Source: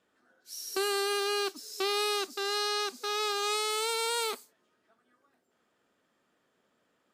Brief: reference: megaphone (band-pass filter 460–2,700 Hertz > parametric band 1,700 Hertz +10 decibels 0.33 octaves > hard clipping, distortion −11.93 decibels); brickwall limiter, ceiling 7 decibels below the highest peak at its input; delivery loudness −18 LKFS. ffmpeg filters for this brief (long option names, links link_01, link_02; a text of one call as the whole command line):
ffmpeg -i in.wav -af "alimiter=level_in=2dB:limit=-24dB:level=0:latency=1,volume=-2dB,highpass=460,lowpass=2700,equalizer=frequency=1700:width_type=o:width=0.33:gain=10,asoftclip=type=hard:threshold=-33dB,volume=20dB" out.wav